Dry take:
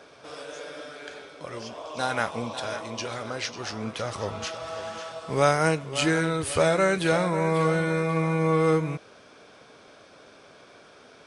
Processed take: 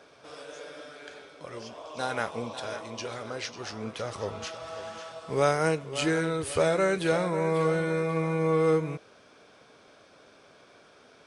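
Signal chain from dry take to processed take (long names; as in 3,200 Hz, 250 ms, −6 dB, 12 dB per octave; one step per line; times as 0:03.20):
dynamic equaliser 430 Hz, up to +5 dB, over −40 dBFS, Q 2.3
level −4.5 dB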